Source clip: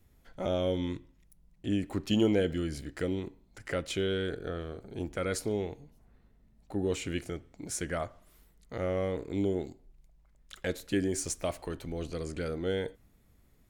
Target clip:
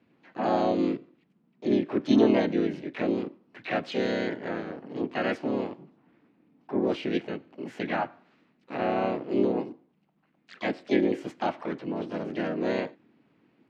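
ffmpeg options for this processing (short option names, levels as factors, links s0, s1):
-filter_complex "[0:a]highpass=f=150:w=0.5412,highpass=f=150:w=1.3066,equalizer=f=250:t=q:w=4:g=6,equalizer=f=430:t=q:w=4:g=-8,equalizer=f=2800:t=q:w=4:g=-4,lowpass=f=2800:w=0.5412,lowpass=f=2800:w=1.3066,asplit=4[s0][s1][s2][s3];[s1]asetrate=52444,aresample=44100,atempo=0.840896,volume=1[s4];[s2]asetrate=58866,aresample=44100,atempo=0.749154,volume=1[s5];[s3]asetrate=88200,aresample=44100,atempo=0.5,volume=0.282[s6];[s0][s4][s5][s6]amix=inputs=4:normalize=0,volume=1.12"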